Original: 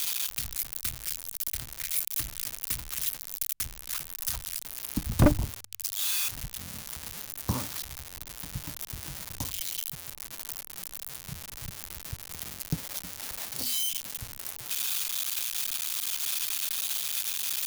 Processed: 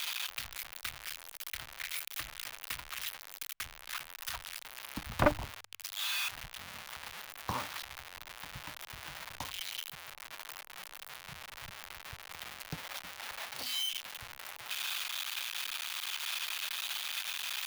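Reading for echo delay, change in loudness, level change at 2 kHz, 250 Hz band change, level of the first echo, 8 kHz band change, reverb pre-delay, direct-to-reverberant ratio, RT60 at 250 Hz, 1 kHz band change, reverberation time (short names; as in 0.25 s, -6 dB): none, -7.5 dB, +2.5 dB, -11.0 dB, none, -11.0 dB, none, none, none, +2.5 dB, none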